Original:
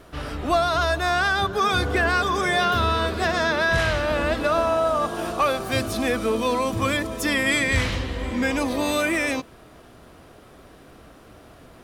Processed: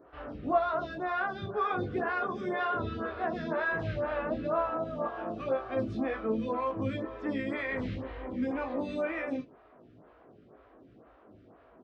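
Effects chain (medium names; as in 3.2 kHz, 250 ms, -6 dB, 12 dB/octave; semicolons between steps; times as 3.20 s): high-pass 46 Hz; bass shelf 77 Hz -10 dB; flange 0.36 Hz, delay 2.1 ms, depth 5.9 ms, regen -77%; tape spacing loss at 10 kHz 43 dB; on a send: early reflections 19 ms -5.5 dB, 36 ms -7.5 dB; on the sum: lamp-driven phase shifter 2 Hz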